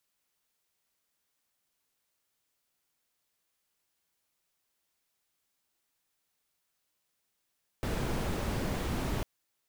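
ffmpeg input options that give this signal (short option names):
-f lavfi -i "anoisesrc=c=brown:a=0.117:d=1.4:r=44100:seed=1"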